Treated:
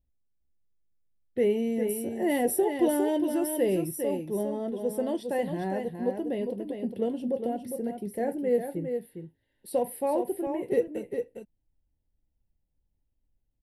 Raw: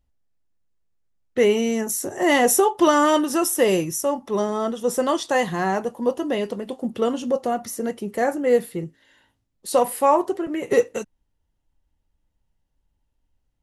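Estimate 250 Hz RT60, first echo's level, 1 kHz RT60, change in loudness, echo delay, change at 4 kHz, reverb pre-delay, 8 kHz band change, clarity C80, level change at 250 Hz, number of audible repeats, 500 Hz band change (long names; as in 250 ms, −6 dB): no reverb audible, −6.5 dB, no reverb audible, −7.5 dB, 406 ms, −16.0 dB, no reverb audible, −12.5 dB, no reverb audible, −5.0 dB, 1, −6.5 dB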